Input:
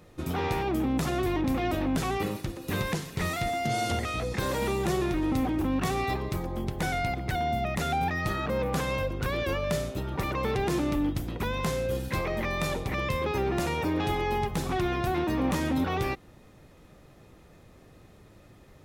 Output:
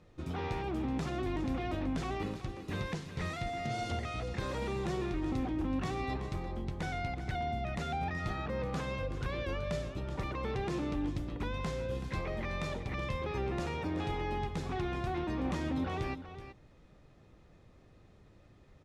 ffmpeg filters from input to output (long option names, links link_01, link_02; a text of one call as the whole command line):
ffmpeg -i in.wav -filter_complex "[0:a]lowpass=6300,lowshelf=frequency=110:gain=5.5,asplit=2[link_01][link_02];[link_02]aecho=0:1:377:0.266[link_03];[link_01][link_03]amix=inputs=2:normalize=0,volume=-8.5dB" out.wav